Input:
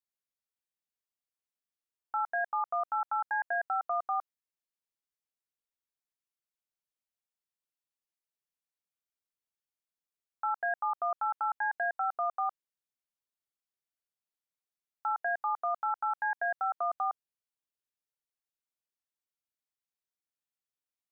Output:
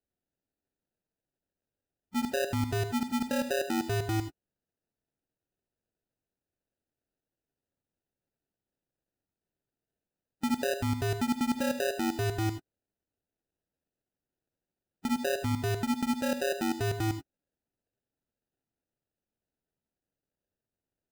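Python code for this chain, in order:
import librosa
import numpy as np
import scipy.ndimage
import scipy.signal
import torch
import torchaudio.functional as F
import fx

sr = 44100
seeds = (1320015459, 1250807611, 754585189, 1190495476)

y = fx.spec_quant(x, sr, step_db=15)
y = fx.sample_hold(y, sr, seeds[0], rate_hz=1100.0, jitter_pct=0)
y = fx.rev_gated(y, sr, seeds[1], gate_ms=110, shape='rising', drr_db=9.5)
y = F.gain(torch.from_numpy(y), 1.5).numpy()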